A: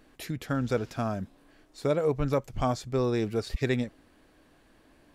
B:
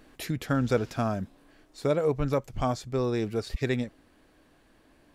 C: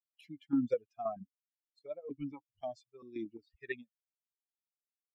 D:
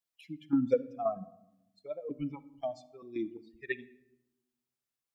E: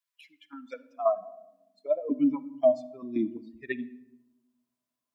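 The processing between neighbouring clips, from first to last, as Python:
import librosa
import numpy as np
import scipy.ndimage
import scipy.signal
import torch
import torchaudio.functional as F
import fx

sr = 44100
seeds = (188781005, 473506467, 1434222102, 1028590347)

y1 = fx.rider(x, sr, range_db=5, speed_s=2.0)
y2 = fx.bin_expand(y1, sr, power=3.0)
y2 = fx.chopper(y2, sr, hz=1.9, depth_pct=65, duty_pct=40)
y2 = fx.vowel_held(y2, sr, hz=4.3)
y2 = y2 * librosa.db_to_amplitude(7.5)
y3 = fx.room_shoebox(y2, sr, seeds[0], volume_m3=3100.0, walls='furnished', distance_m=0.71)
y3 = y3 * librosa.db_to_amplitude(4.0)
y4 = fx.small_body(y3, sr, hz=(250.0, 630.0, 1000.0), ring_ms=55, db=16)
y4 = fx.filter_sweep_highpass(y4, sr, from_hz=1600.0, to_hz=63.0, start_s=0.64, end_s=3.55, q=1.4)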